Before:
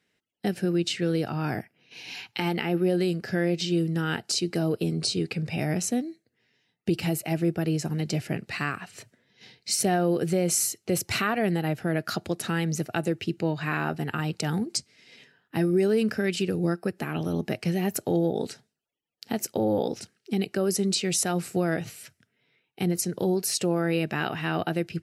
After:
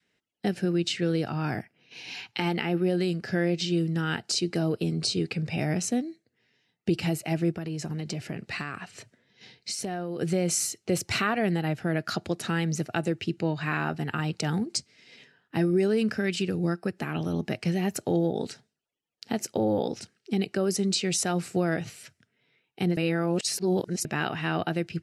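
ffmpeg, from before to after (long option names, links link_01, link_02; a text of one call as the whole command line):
ffmpeg -i in.wav -filter_complex "[0:a]asplit=3[link_01][link_02][link_03];[link_01]afade=type=out:start_time=7.51:duration=0.02[link_04];[link_02]acompressor=threshold=-28dB:ratio=6:attack=3.2:release=140:knee=1:detection=peak,afade=type=in:start_time=7.51:duration=0.02,afade=type=out:start_time=10.18:duration=0.02[link_05];[link_03]afade=type=in:start_time=10.18:duration=0.02[link_06];[link_04][link_05][link_06]amix=inputs=3:normalize=0,asplit=3[link_07][link_08][link_09];[link_07]atrim=end=22.972[link_10];[link_08]atrim=start=22.968:end=24.052,asetpts=PTS-STARTPTS,areverse[link_11];[link_09]atrim=start=24.048[link_12];[link_10][link_11]acrossfade=duration=0.004:curve1=hsin:curve2=hsin[link_13];[link_13][link_12]acrossfade=duration=0.004:curve1=hsin:curve2=hsin,lowpass=8700,adynamicequalizer=threshold=0.0178:dfrequency=470:dqfactor=1.1:tfrequency=470:tqfactor=1.1:attack=5:release=100:ratio=0.375:range=2:mode=cutabove:tftype=bell" out.wav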